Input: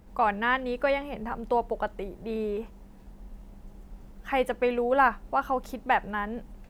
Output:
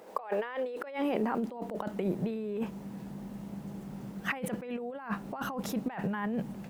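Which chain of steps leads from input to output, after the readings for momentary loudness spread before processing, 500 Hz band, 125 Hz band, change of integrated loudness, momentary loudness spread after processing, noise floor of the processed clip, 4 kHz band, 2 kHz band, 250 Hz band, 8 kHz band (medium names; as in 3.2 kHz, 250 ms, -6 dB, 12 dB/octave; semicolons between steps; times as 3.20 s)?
12 LU, -7.0 dB, +6.0 dB, -7.5 dB, 10 LU, -45 dBFS, -6.5 dB, -10.0 dB, +2.0 dB, no reading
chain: high-pass sweep 490 Hz -> 160 Hz, 0.38–2.24 s; compressor with a negative ratio -35 dBFS, ratio -1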